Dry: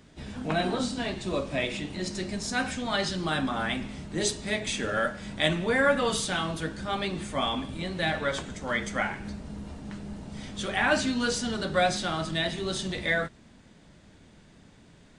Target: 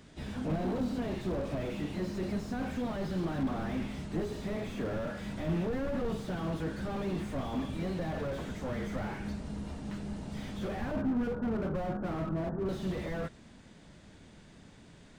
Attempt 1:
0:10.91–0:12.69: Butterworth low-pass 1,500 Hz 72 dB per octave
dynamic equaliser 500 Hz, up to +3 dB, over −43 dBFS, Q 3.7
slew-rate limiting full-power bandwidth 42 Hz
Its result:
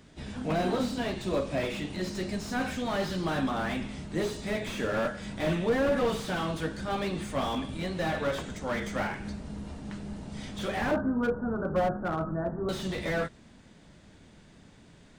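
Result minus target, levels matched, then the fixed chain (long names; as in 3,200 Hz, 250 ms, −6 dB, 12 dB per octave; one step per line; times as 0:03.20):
slew-rate limiting: distortion −7 dB
0:10.91–0:12.69: Butterworth low-pass 1,500 Hz 72 dB per octave
dynamic equaliser 500 Hz, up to +3 dB, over −43 dBFS, Q 3.7
slew-rate limiting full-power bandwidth 11.5 Hz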